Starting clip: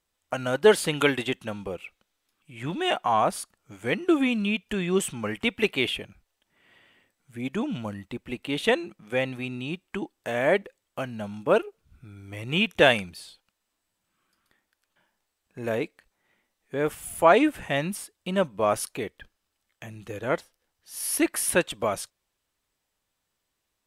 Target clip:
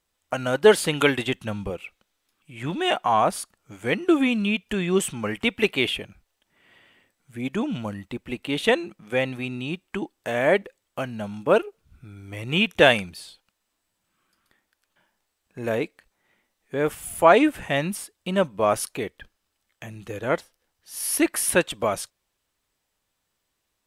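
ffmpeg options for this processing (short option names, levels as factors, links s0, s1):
-filter_complex "[0:a]asettb=1/sr,asplit=3[s0][s1][s2];[s0]atrim=end=1.034[s3];[s1]atrim=start=1.03:end=1.7,asetpts=PTS-STARTPTS,afade=t=in:d=0.004:c=qsin,afade=t=out:st=0.666:d=0.004:c=qsin,asubboost=boost=8.5:cutoff=220[s4];[s2]atrim=start=1.696[s5];[s3][s4]acrossfade=d=0.004:c1=hsin:c2=qsin[s6];[s6][s5]acrossfade=d=0.004:c1=qsin:c2=hsin,volume=1.33"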